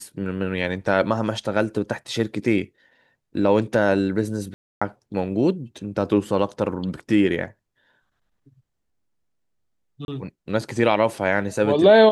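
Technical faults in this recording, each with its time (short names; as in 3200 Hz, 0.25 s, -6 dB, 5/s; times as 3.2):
4.54–4.82 gap 0.275 s
10.05–10.08 gap 31 ms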